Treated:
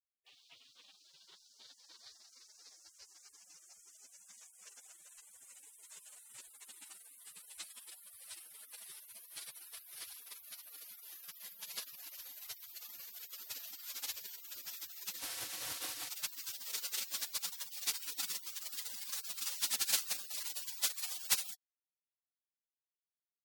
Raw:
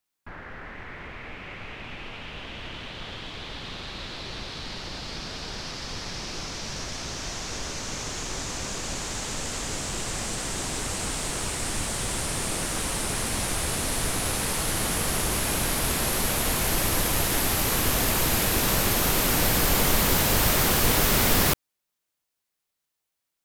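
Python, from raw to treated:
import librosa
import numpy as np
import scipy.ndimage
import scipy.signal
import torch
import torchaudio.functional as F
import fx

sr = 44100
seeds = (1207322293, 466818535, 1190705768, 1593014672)

y = fx.robotise(x, sr, hz=207.0, at=(15.18, 16.1))
y = fx.spec_gate(y, sr, threshold_db=-30, keep='weak')
y = fx.dynamic_eq(y, sr, hz=4500.0, q=1.2, threshold_db=-59.0, ratio=4.0, max_db=4)
y = y * librosa.db_to_amplitude(1.0)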